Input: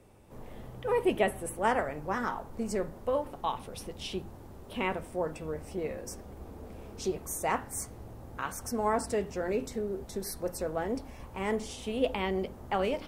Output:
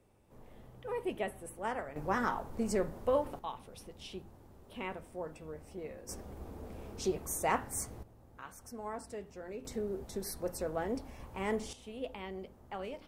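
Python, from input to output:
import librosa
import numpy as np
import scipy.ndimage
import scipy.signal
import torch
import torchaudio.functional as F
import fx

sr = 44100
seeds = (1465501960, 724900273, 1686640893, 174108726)

y = fx.gain(x, sr, db=fx.steps((0.0, -9.5), (1.96, 0.0), (3.39, -9.0), (6.09, -1.0), (8.03, -13.0), (9.65, -3.0), (11.73, -12.0)))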